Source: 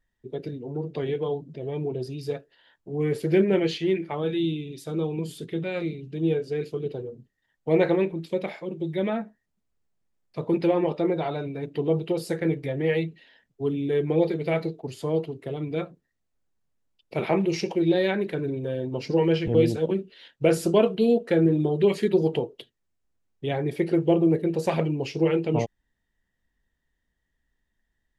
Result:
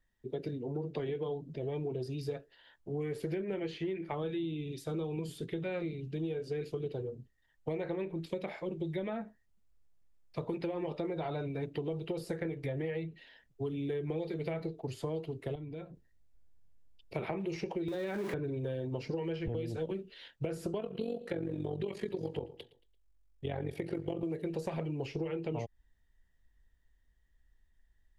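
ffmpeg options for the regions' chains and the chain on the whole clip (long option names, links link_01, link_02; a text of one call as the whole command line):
ffmpeg -i in.wav -filter_complex "[0:a]asettb=1/sr,asplit=3[link_01][link_02][link_03];[link_01]atrim=end=15.554[link_04];[link_02]atrim=start=15.55:end=17.14,asetpts=PTS-STARTPTS,afade=type=in:duration=0.004:curve=qsin,afade=type=out:start_time=1.586:duration=0.004:curve=qsin,lowshelf=frequency=490:gain=6,acompressor=threshold=-43dB:ratio=3:attack=3.2:release=140:knee=1:detection=peak,asuperstop=centerf=1200:order=4:qfactor=6.9[link_05];[link_03]atrim=start=17.136[link_06];[link_04][link_05]acrossfade=duration=0.004:curve1=hsin:curve2=qsin[link_07];[link_07][link_06]acrossfade=duration=0.004:curve1=qsin:curve2=hsin,asettb=1/sr,asplit=3[link_08][link_09][link_10];[link_08]atrim=end=17.884[link_11];[link_09]atrim=start=17.88:end=18.34,asetpts=PTS-STARTPTS,afade=type=in:duration=0.004:curve=qsin,afade=type=out:start_time=0.456:duration=0.004:curve=qsin,aeval=exprs='val(0)+0.5*0.0355*sgn(val(0))':channel_layout=same,highpass=frequency=140:width=0.5412,highpass=frequency=140:width=1.3066,acompressor=threshold=-22dB:ratio=6:attack=3.2:release=140:knee=1:detection=peak[link_12];[link_10]atrim=start=18.336[link_13];[link_11][link_12]acrossfade=duration=0.004:curve1=hsin:curve2=qsin[link_14];[link_14][link_13]acrossfade=duration=0.004:curve1=qsin:curve2=hsin,asettb=1/sr,asplit=3[link_15][link_16][link_17];[link_15]atrim=end=20.804[link_18];[link_16]atrim=start=20.8:end=24.23,asetpts=PTS-STARTPTS,afade=type=in:duration=0.004:curve=qsin,afade=type=out:start_time=3.426:duration=0.004:curve=qsin,tremolo=f=46:d=0.75,aecho=1:1:113|226|339:0.075|0.0322|0.0139,atrim=end_sample=151263[link_19];[link_17]atrim=start=24.226[link_20];[link_18][link_19]acrossfade=duration=0.004:curve1=hsin:curve2=qsin[link_21];[link_21][link_20]acrossfade=duration=0.004:curve1=qsin:curve2=hsin,acrossover=split=390|2100[link_22][link_23][link_24];[link_22]acompressor=threshold=-29dB:ratio=4[link_25];[link_23]acompressor=threshold=-30dB:ratio=4[link_26];[link_24]acompressor=threshold=-49dB:ratio=4[link_27];[link_25][link_26][link_27]amix=inputs=3:normalize=0,asubboost=boost=3.5:cutoff=93,acompressor=threshold=-31dB:ratio=6,volume=-1.5dB" out.wav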